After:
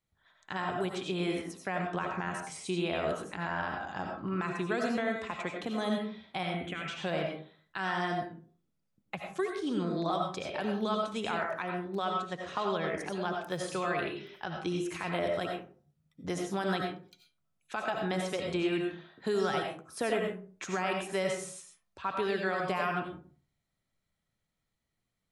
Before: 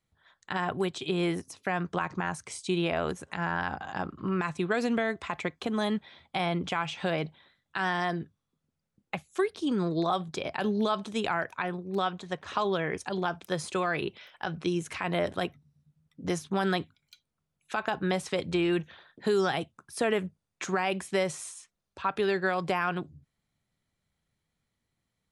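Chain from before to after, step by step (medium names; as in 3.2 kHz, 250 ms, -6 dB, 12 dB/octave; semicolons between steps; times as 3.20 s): 6.43–6.88 s: static phaser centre 2.2 kHz, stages 4; reverberation RT60 0.45 s, pre-delay 50 ms, DRR 1 dB; trim -5 dB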